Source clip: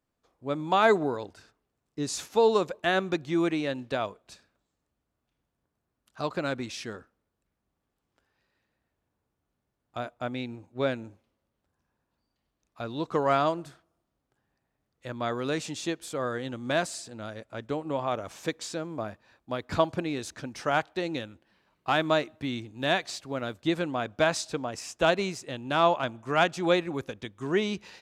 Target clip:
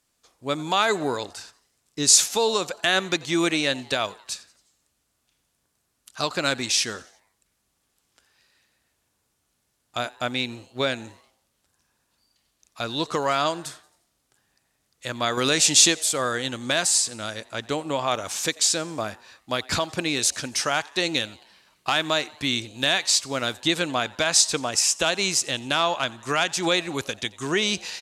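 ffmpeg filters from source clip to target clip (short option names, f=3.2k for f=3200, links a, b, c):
-filter_complex "[0:a]lowpass=9.8k,asettb=1/sr,asplit=3[a][b][c];[a]atrim=end=15.374[d];[b]atrim=start=15.37:end=15.99,asetpts=PTS-STARTPTS,afade=t=in:d=0.004:c=qsin,afade=t=out:st=0.616:d=0.004:c=qsin,acontrast=46[e];[c]atrim=start=15.986[f];[d][e]acrossfade=d=0.004:c1=hsin:c2=qsin[g];[g][f]acrossfade=d=0.004:c1=qsin:c2=hsin,alimiter=limit=-18dB:level=0:latency=1:release=245,crystalizer=i=8.5:c=0,asplit=5[h][i][j][k][l];[i]adelay=89,afreqshift=140,volume=-23.5dB[m];[j]adelay=178,afreqshift=280,volume=-28.7dB[n];[k]adelay=267,afreqshift=420,volume=-33.9dB[o];[l]adelay=356,afreqshift=560,volume=-39.1dB[p];[h][m][n][o][p]amix=inputs=5:normalize=0,volume=2.5dB"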